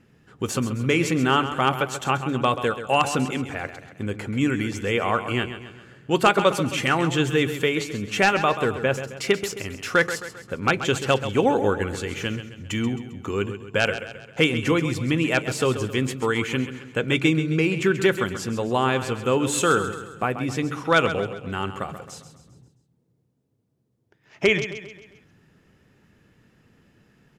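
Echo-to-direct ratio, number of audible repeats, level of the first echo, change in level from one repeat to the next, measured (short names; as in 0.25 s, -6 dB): -10.0 dB, 4, -11.0 dB, -6.5 dB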